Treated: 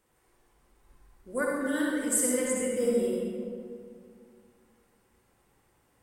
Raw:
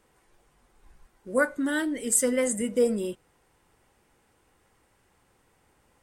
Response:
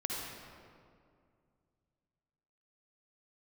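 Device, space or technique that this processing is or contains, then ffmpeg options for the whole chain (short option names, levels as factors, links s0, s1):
stairwell: -filter_complex "[1:a]atrim=start_sample=2205[s0];[0:a][s0]afir=irnorm=-1:irlink=0,highshelf=f=11000:g=10,volume=0.473"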